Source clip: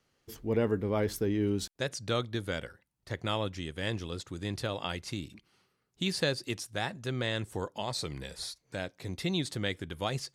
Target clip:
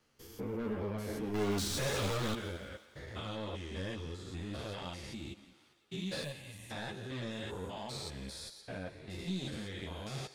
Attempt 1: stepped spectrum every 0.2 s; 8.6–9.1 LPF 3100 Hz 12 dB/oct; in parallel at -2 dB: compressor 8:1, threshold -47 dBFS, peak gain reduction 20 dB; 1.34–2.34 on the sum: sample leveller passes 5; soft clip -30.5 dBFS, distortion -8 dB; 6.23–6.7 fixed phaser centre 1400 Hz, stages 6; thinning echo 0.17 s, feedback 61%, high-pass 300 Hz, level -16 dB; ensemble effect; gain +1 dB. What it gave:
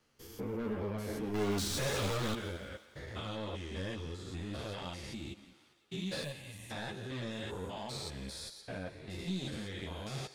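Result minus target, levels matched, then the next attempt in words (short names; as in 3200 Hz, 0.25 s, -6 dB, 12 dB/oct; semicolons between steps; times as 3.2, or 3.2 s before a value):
compressor: peak gain reduction -6.5 dB
stepped spectrum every 0.2 s; 8.6–9.1 LPF 3100 Hz 12 dB/oct; in parallel at -2 dB: compressor 8:1, threshold -54.5 dBFS, peak gain reduction 26.5 dB; 1.34–2.34 on the sum: sample leveller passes 5; soft clip -30.5 dBFS, distortion -9 dB; 6.23–6.7 fixed phaser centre 1400 Hz, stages 6; thinning echo 0.17 s, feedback 61%, high-pass 300 Hz, level -16 dB; ensemble effect; gain +1 dB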